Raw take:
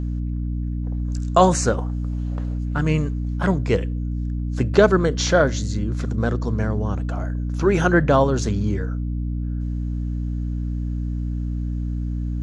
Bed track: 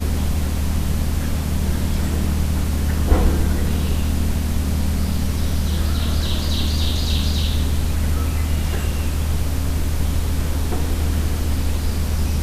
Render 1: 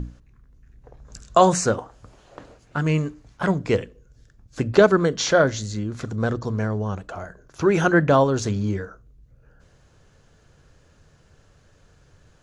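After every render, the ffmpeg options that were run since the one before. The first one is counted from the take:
-af "bandreject=f=60:t=h:w=6,bandreject=f=120:t=h:w=6,bandreject=f=180:t=h:w=6,bandreject=f=240:t=h:w=6,bandreject=f=300:t=h:w=6"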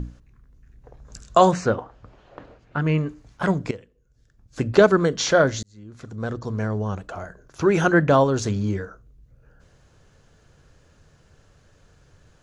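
-filter_complex "[0:a]asettb=1/sr,asplit=3[a][b][c];[a]atrim=end=1.514[d];[b]atrim=start=1.51:end=3.09,asetpts=PTS-STARTPTS,afade=t=in:d=0.004:c=qsin,afade=t=out:st=1.576:d=0.004:c=qsin,lowpass=3.3k[e];[c]atrim=start=3.086[f];[d][e]acrossfade=d=0.004:c1=hsin:c2=qsin[g];[g][f]acrossfade=d=0.004:c1=qsin:c2=hsin,asplit=3[h][i][j];[h]atrim=end=3.71,asetpts=PTS-STARTPTS,afade=t=out:st=3.706:d=0.004:c=hsin:silence=0.141254[k];[i]atrim=start=3.71:end=5.63,asetpts=PTS-STARTPTS,afade=t=in:d=0.92:c=qua:silence=0.141254,afade=t=out:st=1.916:d=0.004:c=hsin[l];[j]atrim=start=5.63,asetpts=PTS-STARTPTS,afade=t=in:d=1.14[m];[k][l][m]concat=n=3:v=0:a=1"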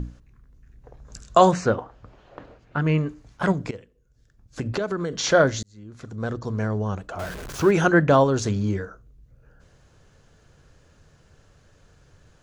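-filter_complex "[0:a]asettb=1/sr,asplit=3[a][b][c];[a]atrim=end=3.524[d];[b]atrim=start=3.52:end=5.24,asetpts=PTS-STARTPTS,afade=t=in:d=0.004:c=qsin,afade=t=out:st=1.716:d=0.004:c=qsin,acompressor=threshold=-23dB:ratio=6:attack=3.2:release=140:knee=1:detection=peak[e];[c]atrim=start=5.236[f];[d][e]acrossfade=d=0.004:c1=hsin:c2=qsin[g];[g][f]acrossfade=d=0.004:c1=qsin:c2=hsin,asettb=1/sr,asplit=3[h][i][j];[h]atrim=end=7.194[k];[i]atrim=start=7.19:end=7.71,asetpts=PTS-STARTPTS,afade=t=in:d=0.004:c=qsin,afade=t=out:st=0.516:d=0.004:c=qsin,aeval=exprs='val(0)+0.5*0.0282*sgn(val(0))':c=same[l];[j]atrim=start=7.706[m];[k][l]acrossfade=d=0.004:c1=hsin:c2=qsin[n];[n][m]acrossfade=d=0.004:c1=qsin:c2=hsin"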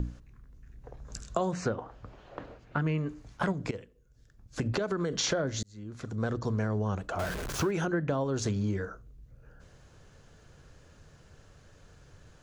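-filter_complex "[0:a]acrossover=split=470[a][b];[b]alimiter=limit=-16dB:level=0:latency=1:release=204[c];[a][c]amix=inputs=2:normalize=0,acompressor=threshold=-26dB:ratio=10"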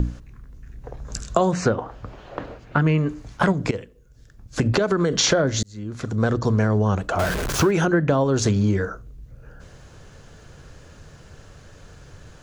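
-af "volume=10.5dB"

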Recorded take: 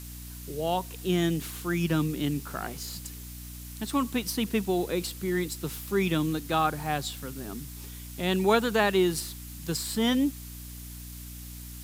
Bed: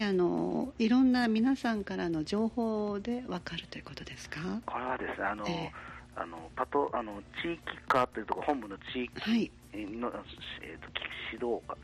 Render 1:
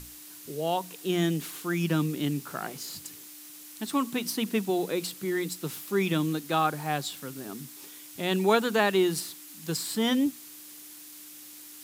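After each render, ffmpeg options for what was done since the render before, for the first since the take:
-af "bandreject=f=60:t=h:w=6,bandreject=f=120:t=h:w=6,bandreject=f=180:t=h:w=6,bandreject=f=240:t=h:w=6"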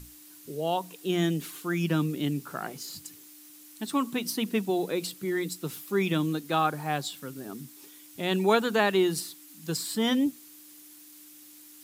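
-af "afftdn=nr=6:nf=-47"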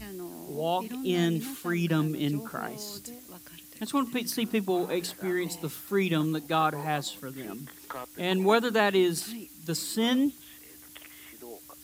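-filter_complex "[1:a]volume=-12dB[a];[0:a][a]amix=inputs=2:normalize=0"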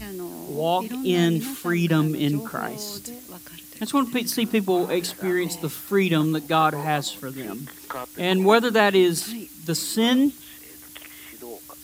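-af "volume=6dB"

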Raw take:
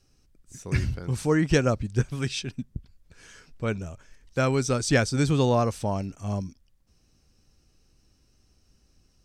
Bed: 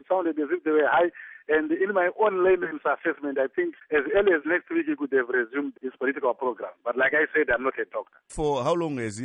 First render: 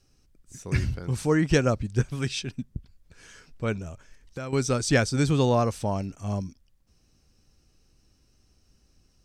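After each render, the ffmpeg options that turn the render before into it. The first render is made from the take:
-filter_complex "[0:a]asettb=1/sr,asplit=3[a][b][c];[a]atrim=end=3.774[d];[b]atrim=start=3.77:end=4.53,asetpts=PTS-STARTPTS,afade=t=in:d=0.004:c=qsin,afade=t=out:st=0.756:d=0.004:c=qsin,acompressor=threshold=-31dB:ratio=6:attack=3.2:release=140:knee=1:detection=peak[e];[c]atrim=start=4.526[f];[d][e]acrossfade=d=0.004:c1=hsin:c2=qsin[g];[g][f]acrossfade=d=0.004:c1=qsin:c2=hsin"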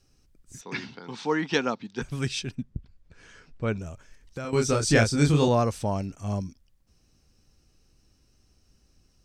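-filter_complex "[0:a]asettb=1/sr,asplit=3[a][b][c];[a]atrim=end=0.614[d];[b]atrim=start=0.61:end=2.02,asetpts=PTS-STARTPTS,afade=t=in:d=0.004:c=qsin,afade=t=out:st=1.406:d=0.004:c=qsin,highpass=f=220:w=0.5412,highpass=f=220:w=1.3066,equalizer=f=340:t=q:w=4:g=-6,equalizer=f=580:t=q:w=4:g=-9,equalizer=f=890:t=q:w=4:g=8,equalizer=f=3.6k:t=q:w=4:g=8,lowpass=f=5.4k:w=0.5412,lowpass=f=5.4k:w=1.3066[e];[c]atrim=start=2.016[f];[d][e]acrossfade=d=0.004:c1=hsin:c2=qsin[g];[g][f]acrossfade=d=0.004:c1=qsin:c2=hsin,asettb=1/sr,asplit=3[h][i][j];[h]atrim=end=2.554[k];[i]atrim=start=2.55:end=3.76,asetpts=PTS-STARTPTS,afade=t=in:d=0.004:c=qsin,afade=t=out:st=1.206:d=0.004:c=qsin,aemphasis=mode=reproduction:type=50fm[l];[j]atrim=start=3.756[m];[k][l]acrossfade=d=0.004:c1=hsin:c2=qsin[n];[n][m]acrossfade=d=0.004:c1=qsin:c2=hsin,asettb=1/sr,asplit=3[o][p][q];[o]atrim=end=4.424[r];[p]atrim=start=4.42:end=5.48,asetpts=PTS-STARTPTS,afade=t=in:d=0.004:c=qsin,afade=t=out:st=1.056:d=0.004:c=qsin,asplit=2[s][t];[t]adelay=27,volume=-3dB[u];[s][u]amix=inputs=2:normalize=0,atrim=end_sample=46746[v];[q]atrim=start=5.476[w];[r][v]acrossfade=d=0.004:c1=hsin:c2=qsin[x];[x][w]acrossfade=d=0.004:c1=qsin:c2=hsin"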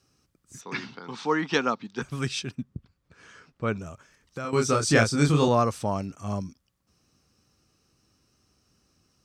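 -af "highpass=100,equalizer=f=1.2k:t=o:w=0.44:g=7"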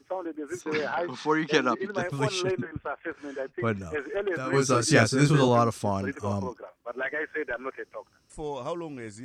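-filter_complex "[1:a]volume=-9dB[a];[0:a][a]amix=inputs=2:normalize=0"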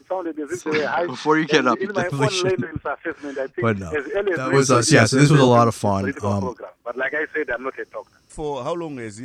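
-af "volume=7.5dB,alimiter=limit=-1dB:level=0:latency=1"

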